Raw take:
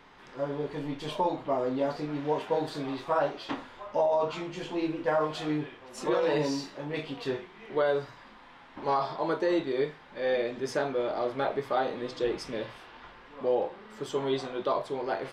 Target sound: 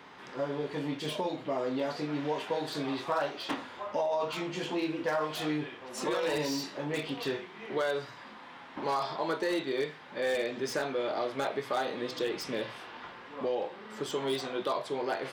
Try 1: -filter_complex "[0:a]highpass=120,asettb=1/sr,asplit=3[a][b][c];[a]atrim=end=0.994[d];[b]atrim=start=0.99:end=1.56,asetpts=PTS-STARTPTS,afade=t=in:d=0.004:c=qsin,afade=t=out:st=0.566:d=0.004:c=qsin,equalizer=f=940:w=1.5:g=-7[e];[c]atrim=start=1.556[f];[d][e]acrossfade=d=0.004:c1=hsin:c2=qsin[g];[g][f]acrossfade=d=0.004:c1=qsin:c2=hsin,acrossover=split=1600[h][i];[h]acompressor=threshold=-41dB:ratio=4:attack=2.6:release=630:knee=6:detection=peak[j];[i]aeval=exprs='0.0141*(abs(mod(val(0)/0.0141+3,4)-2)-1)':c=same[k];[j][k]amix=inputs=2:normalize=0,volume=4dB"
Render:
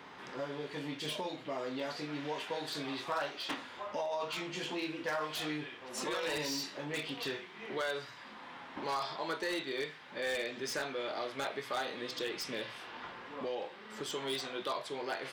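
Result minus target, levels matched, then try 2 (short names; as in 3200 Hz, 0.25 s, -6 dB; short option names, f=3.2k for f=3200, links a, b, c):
compressor: peak gain reduction +7 dB
-filter_complex "[0:a]highpass=120,asettb=1/sr,asplit=3[a][b][c];[a]atrim=end=0.994[d];[b]atrim=start=0.99:end=1.56,asetpts=PTS-STARTPTS,afade=t=in:d=0.004:c=qsin,afade=t=out:st=0.566:d=0.004:c=qsin,equalizer=f=940:w=1.5:g=-7[e];[c]atrim=start=1.556[f];[d][e]acrossfade=d=0.004:c1=hsin:c2=qsin[g];[g][f]acrossfade=d=0.004:c1=qsin:c2=hsin,acrossover=split=1600[h][i];[h]acompressor=threshold=-31.5dB:ratio=4:attack=2.6:release=630:knee=6:detection=peak[j];[i]aeval=exprs='0.0141*(abs(mod(val(0)/0.0141+3,4)-2)-1)':c=same[k];[j][k]amix=inputs=2:normalize=0,volume=4dB"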